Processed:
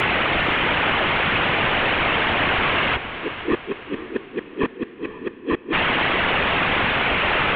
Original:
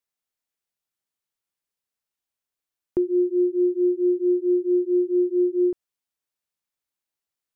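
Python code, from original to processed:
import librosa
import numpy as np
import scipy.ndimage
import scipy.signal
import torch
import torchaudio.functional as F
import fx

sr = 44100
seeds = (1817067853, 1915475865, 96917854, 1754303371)

y = fx.delta_mod(x, sr, bps=16000, step_db=-25.0)
y = fx.over_compress(y, sr, threshold_db=-25.0, ratio=-1.0)
y = fx.transient(y, sr, attack_db=-8, sustain_db=3)
y = fx.gate_flip(y, sr, shuts_db=-21.0, range_db=-35)
y = fx.whisperise(y, sr, seeds[0])
y = fx.echo_diffused(y, sr, ms=506, feedback_pct=44, wet_db=-11.5)
y = y * 10.0 ** (9.0 / 20.0)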